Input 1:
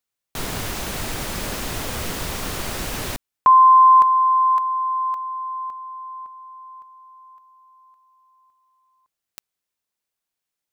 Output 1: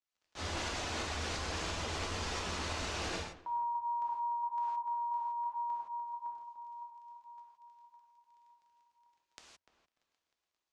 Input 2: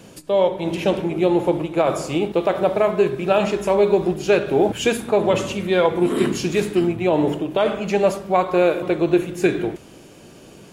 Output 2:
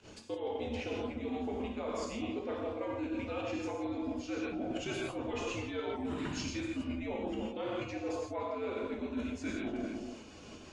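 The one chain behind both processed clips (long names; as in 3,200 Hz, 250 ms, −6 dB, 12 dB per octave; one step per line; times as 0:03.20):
brickwall limiter −12.5 dBFS
surface crackle 29 per second −53 dBFS
reverb reduction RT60 1 s
low-pass filter 6,900 Hz 24 dB per octave
on a send: feedback echo with a low-pass in the loop 295 ms, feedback 18%, low-pass 1,400 Hz, level −9 dB
on the sum: frequency shifter −93 Hz
fake sidechain pumping 88 BPM, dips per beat 2, −17 dB, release 121 ms
low-shelf EQ 170 Hz −8.5 dB
reverb whose tail is shaped and stops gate 190 ms flat, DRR −2 dB
reversed playback
downward compressor 16 to 1, threshold −29 dBFS
reversed playback
level −4.5 dB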